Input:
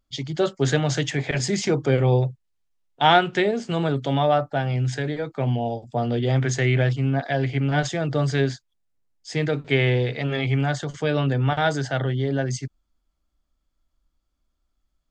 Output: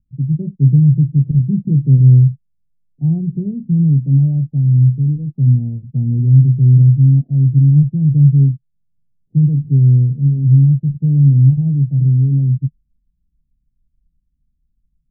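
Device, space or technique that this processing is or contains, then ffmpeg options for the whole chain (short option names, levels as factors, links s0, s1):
the neighbour's flat through the wall: -af "lowpass=f=210:w=0.5412,lowpass=f=210:w=1.3066,equalizer=f=150:t=o:w=0.74:g=8,volume=2.51"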